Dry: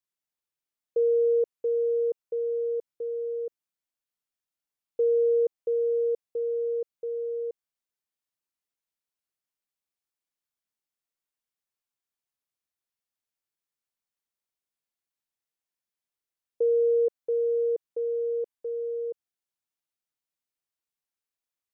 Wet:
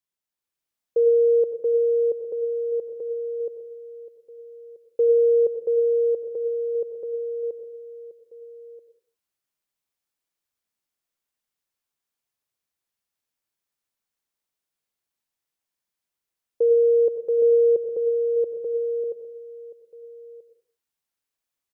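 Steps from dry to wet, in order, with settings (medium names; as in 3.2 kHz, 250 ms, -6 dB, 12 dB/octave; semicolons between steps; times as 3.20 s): echo from a far wall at 220 m, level -16 dB; level rider gain up to 4.5 dB; 17.42–19.04 s: bass shelf 480 Hz +7 dB; reverberation RT60 0.50 s, pre-delay 75 ms, DRR 10 dB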